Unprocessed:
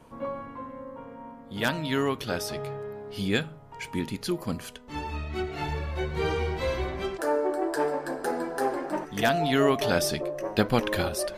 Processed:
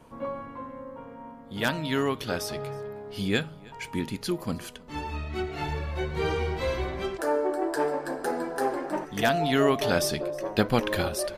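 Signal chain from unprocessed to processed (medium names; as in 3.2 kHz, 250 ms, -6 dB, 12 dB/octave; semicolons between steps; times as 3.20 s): delay 317 ms -24 dB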